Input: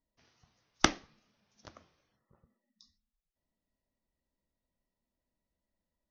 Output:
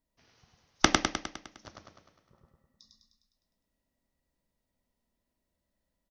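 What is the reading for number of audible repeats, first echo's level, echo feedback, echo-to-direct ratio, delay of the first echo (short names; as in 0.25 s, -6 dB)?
7, -3.0 dB, 57%, -1.5 dB, 0.102 s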